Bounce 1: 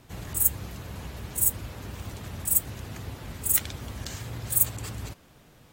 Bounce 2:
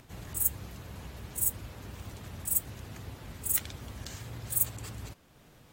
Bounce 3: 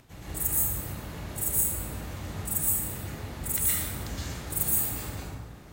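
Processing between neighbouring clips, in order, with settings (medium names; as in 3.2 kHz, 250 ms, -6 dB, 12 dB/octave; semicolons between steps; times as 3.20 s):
upward compressor, threshold -45 dBFS; trim -5.5 dB
plate-style reverb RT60 1.7 s, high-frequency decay 0.5×, pre-delay 105 ms, DRR -8.5 dB; trim -2 dB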